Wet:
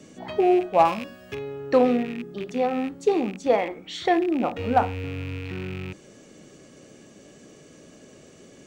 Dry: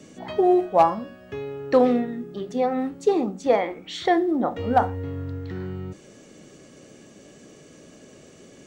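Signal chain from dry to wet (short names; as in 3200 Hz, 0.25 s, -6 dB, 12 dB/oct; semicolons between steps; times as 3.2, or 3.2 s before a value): rattling part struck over -36 dBFS, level -27 dBFS; 0.85–1.35 high shelf 3000 Hz +11 dB; gain -1 dB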